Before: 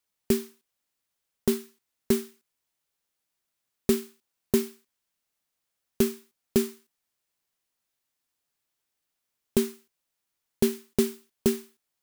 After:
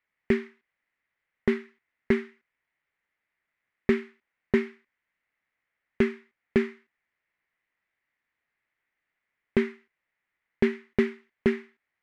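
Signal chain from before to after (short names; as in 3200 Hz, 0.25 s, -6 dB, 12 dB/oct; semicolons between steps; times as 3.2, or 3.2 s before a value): synth low-pass 2000 Hz, resonance Q 5.1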